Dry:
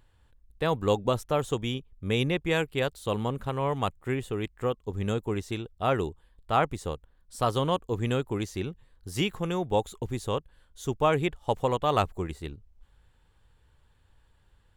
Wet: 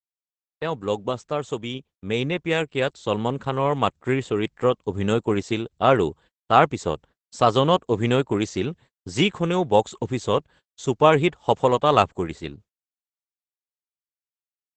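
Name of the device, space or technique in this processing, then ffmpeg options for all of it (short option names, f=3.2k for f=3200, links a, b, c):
video call: -af "highpass=130,dynaudnorm=f=850:g=7:m=12dB,agate=range=-57dB:threshold=-46dB:ratio=16:detection=peak" -ar 48000 -c:a libopus -b:a 12k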